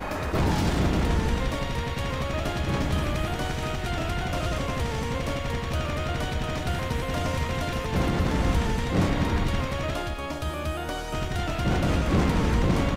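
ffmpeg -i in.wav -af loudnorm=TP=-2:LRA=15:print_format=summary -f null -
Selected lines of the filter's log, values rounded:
Input Integrated:    -27.1 LUFS
Input True Peak:     -12.4 dBTP
Input LRA:             2.4 LU
Input Threshold:     -37.1 LUFS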